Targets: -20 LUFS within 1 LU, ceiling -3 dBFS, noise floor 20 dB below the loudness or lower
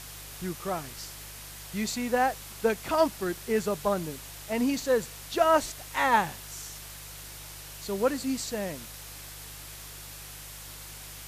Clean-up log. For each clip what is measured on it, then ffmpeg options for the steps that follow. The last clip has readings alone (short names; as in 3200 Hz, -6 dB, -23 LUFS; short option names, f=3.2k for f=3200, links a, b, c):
hum 50 Hz; harmonics up to 150 Hz; hum level -48 dBFS; noise floor -44 dBFS; noise floor target -49 dBFS; loudness -29.0 LUFS; peak -11.0 dBFS; loudness target -20.0 LUFS
-> -af "bandreject=f=50:t=h:w=4,bandreject=f=100:t=h:w=4,bandreject=f=150:t=h:w=4"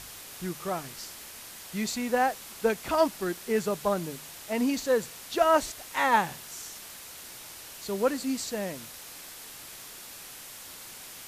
hum none; noise floor -45 dBFS; noise floor target -49 dBFS
-> -af "afftdn=nr=6:nf=-45"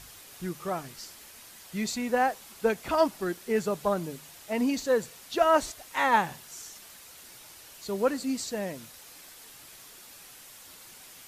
noise floor -50 dBFS; loudness -29.0 LUFS; peak -11.0 dBFS; loudness target -20.0 LUFS
-> -af "volume=9dB,alimiter=limit=-3dB:level=0:latency=1"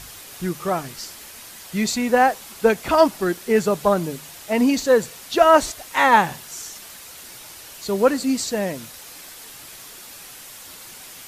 loudness -20.0 LUFS; peak -3.0 dBFS; noise floor -41 dBFS